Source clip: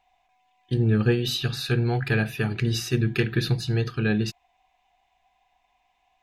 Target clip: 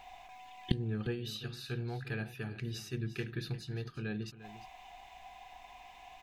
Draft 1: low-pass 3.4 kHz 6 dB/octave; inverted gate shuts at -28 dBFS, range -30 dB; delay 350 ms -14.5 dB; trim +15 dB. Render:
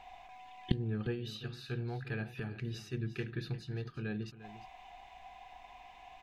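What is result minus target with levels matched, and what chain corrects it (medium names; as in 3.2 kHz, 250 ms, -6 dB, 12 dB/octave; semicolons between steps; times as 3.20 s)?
4 kHz band -3.0 dB
inverted gate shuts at -28 dBFS, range -30 dB; delay 350 ms -14.5 dB; trim +15 dB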